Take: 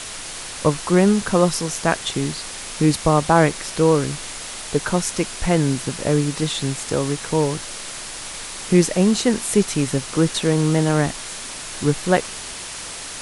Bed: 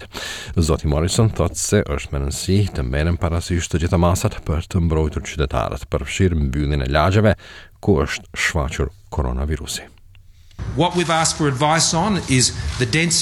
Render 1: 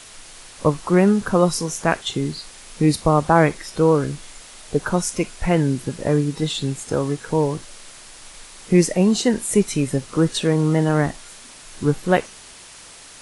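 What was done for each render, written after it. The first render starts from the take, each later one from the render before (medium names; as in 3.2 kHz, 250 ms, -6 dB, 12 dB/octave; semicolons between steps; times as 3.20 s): noise print and reduce 10 dB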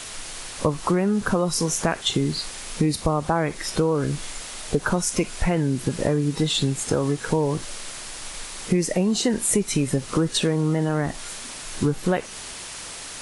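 in parallel at +0.5 dB: peak limiter -13.5 dBFS, peak gain reduction 11.5 dB; on the sum: compression, threshold -18 dBFS, peak gain reduction 11.5 dB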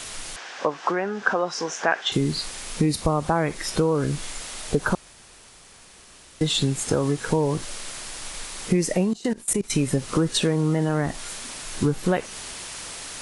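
0.36–2.12 s: cabinet simulation 400–5600 Hz, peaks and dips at 770 Hz +5 dB, 1.6 kHz +8 dB, 4.2 kHz -6 dB; 4.95–6.41 s: room tone; 9.04–9.70 s: level held to a coarse grid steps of 22 dB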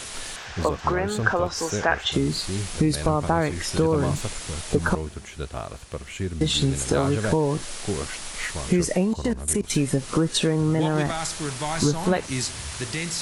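add bed -12.5 dB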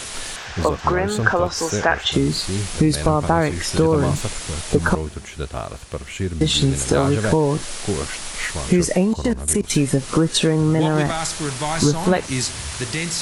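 trim +4.5 dB; peak limiter -3 dBFS, peak gain reduction 2 dB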